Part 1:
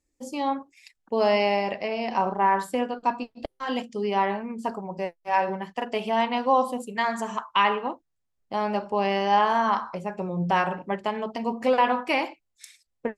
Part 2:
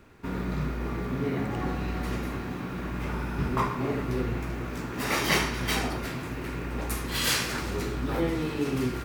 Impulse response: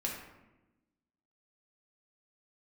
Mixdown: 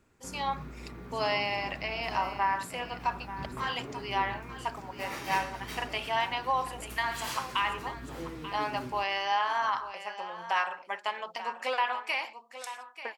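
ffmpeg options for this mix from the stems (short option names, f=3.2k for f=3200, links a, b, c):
-filter_complex "[0:a]highpass=1.1k,alimiter=limit=-20dB:level=0:latency=1:release=478,volume=1.5dB,asplit=2[a][b];[b]volume=-13dB[c];[1:a]volume=-13dB,asplit=2[d][e];[e]volume=-17.5dB[f];[c][f]amix=inputs=2:normalize=0,aecho=0:1:887:1[g];[a][d][g]amix=inputs=3:normalize=0"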